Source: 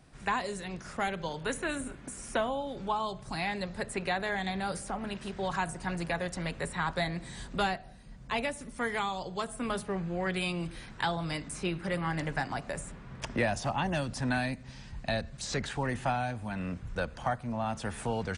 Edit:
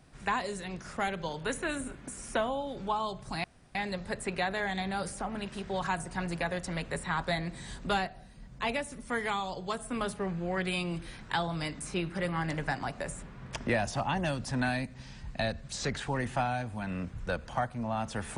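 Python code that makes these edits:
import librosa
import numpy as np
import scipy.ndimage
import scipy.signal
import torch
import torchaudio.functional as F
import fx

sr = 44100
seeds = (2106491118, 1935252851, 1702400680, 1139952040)

y = fx.edit(x, sr, fx.insert_room_tone(at_s=3.44, length_s=0.31), tone=tone)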